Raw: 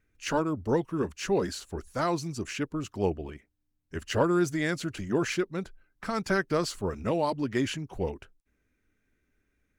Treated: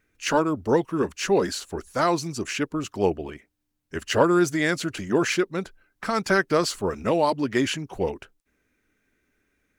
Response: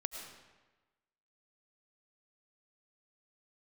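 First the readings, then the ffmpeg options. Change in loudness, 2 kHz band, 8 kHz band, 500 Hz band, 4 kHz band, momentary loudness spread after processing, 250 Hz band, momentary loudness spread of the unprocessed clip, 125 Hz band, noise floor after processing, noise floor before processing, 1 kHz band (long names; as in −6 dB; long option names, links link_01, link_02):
+5.5 dB, +7.0 dB, +7.0 dB, +6.0 dB, +7.0 dB, 11 LU, +4.5 dB, 11 LU, +1.5 dB, −75 dBFS, −77 dBFS, +6.5 dB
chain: -af "lowshelf=frequency=150:gain=-10.5,volume=7dB"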